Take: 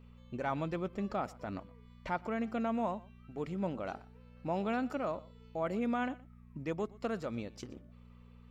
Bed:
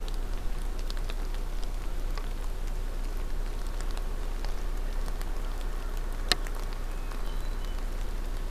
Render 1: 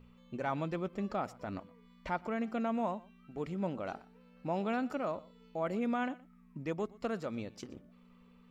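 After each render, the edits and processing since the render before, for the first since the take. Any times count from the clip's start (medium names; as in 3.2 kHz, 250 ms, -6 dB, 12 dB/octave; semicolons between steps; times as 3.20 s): de-hum 60 Hz, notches 2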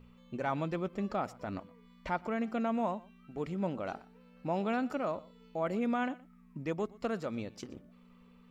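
trim +1.5 dB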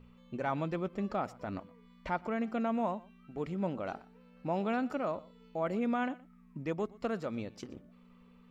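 treble shelf 5 kHz -4.5 dB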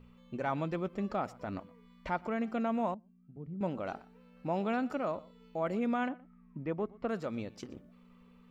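2.94–3.61 s: band-pass filter 130 Hz, Q 1.5; 6.09–7.09 s: Bessel low-pass 1.9 kHz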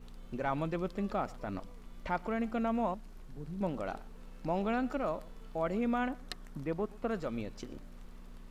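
add bed -18 dB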